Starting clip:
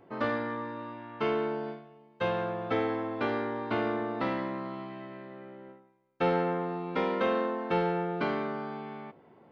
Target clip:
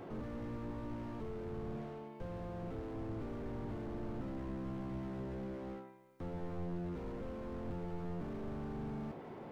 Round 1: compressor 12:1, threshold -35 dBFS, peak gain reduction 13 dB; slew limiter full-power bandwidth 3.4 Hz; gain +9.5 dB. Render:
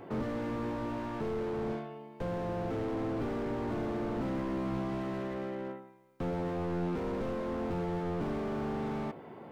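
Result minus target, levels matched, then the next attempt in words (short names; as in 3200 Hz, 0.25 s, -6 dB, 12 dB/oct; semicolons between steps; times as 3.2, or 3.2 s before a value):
slew limiter: distortion -11 dB
compressor 12:1, threshold -35 dBFS, peak gain reduction 13 dB; slew limiter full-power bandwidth 1 Hz; gain +9.5 dB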